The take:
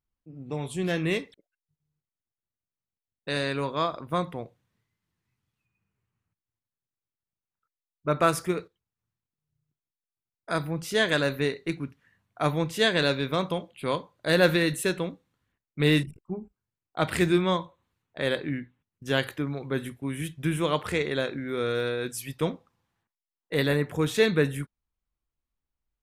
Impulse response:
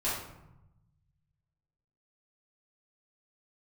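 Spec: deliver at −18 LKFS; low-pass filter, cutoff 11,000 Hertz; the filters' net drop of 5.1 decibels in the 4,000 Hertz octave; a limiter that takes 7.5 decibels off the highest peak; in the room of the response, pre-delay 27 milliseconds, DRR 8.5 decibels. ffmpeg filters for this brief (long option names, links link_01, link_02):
-filter_complex "[0:a]lowpass=11000,equalizer=frequency=4000:width_type=o:gain=-6,alimiter=limit=-16dB:level=0:latency=1,asplit=2[link_01][link_02];[1:a]atrim=start_sample=2205,adelay=27[link_03];[link_02][link_03]afir=irnorm=-1:irlink=0,volume=-16dB[link_04];[link_01][link_04]amix=inputs=2:normalize=0,volume=11.5dB"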